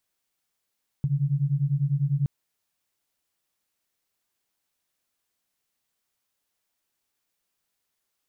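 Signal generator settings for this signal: beating tones 136 Hz, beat 10 Hz, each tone -24.5 dBFS 1.22 s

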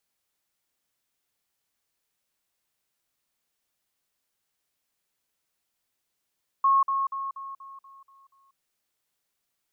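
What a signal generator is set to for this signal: level ladder 1090 Hz -17 dBFS, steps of -6 dB, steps 8, 0.19 s 0.05 s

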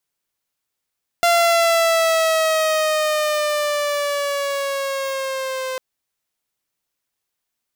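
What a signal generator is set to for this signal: gliding synth tone saw, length 4.55 s, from 690 Hz, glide -5 st, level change -11 dB, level -10 dB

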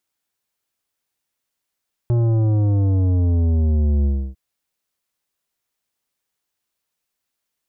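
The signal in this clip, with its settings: sub drop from 120 Hz, over 2.25 s, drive 11 dB, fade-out 0.30 s, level -15.5 dB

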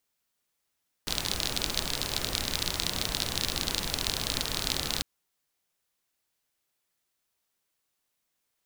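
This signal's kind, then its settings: rain from filtered ticks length 3.95 s, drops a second 38, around 4000 Hz, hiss -1 dB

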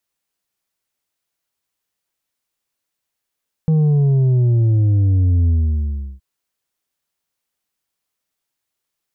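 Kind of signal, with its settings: sub drop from 160 Hz, over 2.52 s, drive 5 dB, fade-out 0.72 s, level -12 dB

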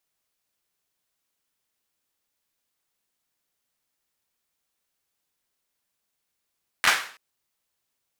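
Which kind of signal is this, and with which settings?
hand clap length 0.33 s, apart 11 ms, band 1600 Hz, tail 0.46 s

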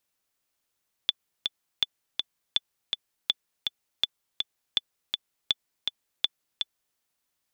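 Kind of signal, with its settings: metronome 163 bpm, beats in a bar 2, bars 8, 3480 Hz, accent 4.5 dB -9 dBFS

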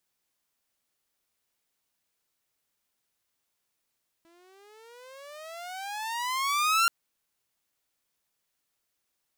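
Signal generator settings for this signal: gliding synth tone saw, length 2.63 s, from 329 Hz, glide +25 st, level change +38.5 dB, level -17 dB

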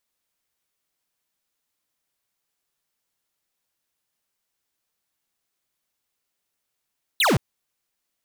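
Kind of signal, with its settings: laser zap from 4300 Hz, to 96 Hz, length 0.17 s square, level -18.5 dB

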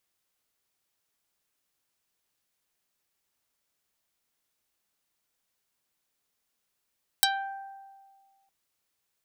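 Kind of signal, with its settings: plucked string G5, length 1.26 s, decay 1.75 s, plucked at 0.32, dark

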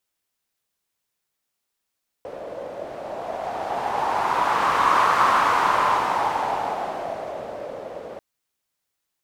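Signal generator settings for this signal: wind-like swept noise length 5.94 s, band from 550 Hz, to 1100 Hz, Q 4.3, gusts 1, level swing 17 dB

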